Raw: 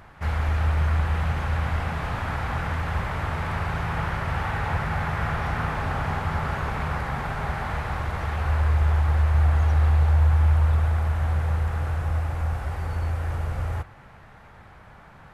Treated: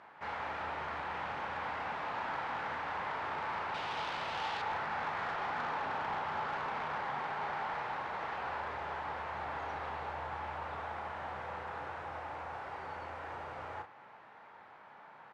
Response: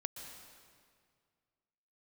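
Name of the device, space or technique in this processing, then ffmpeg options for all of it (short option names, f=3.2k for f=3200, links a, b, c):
intercom: -filter_complex "[0:a]highpass=340,lowpass=4k,equalizer=f=910:t=o:w=0.31:g=6,asoftclip=type=tanh:threshold=-24.5dB,asplit=2[a][b];[b]adelay=34,volume=-8dB[c];[a][c]amix=inputs=2:normalize=0,asettb=1/sr,asplit=3[d][e][f];[d]atrim=end=3.744[g];[e]atrim=start=3.74:end=4.62,asetpts=PTS-STARTPTS,afade=t=in:d=0.004:c=qsin,afade=t=out:st=0.876:d=0.004:c=qsin,highshelf=f=2.4k:t=q:w=1.5:g=7[h];[f]atrim=start=4.616[i];[g][h]acrossfade=d=0.004:c1=hsin:c2=qsin[j];[j][i]acrossfade=d=0.004:c1=qsin:c2=hsin,volume=-6.5dB"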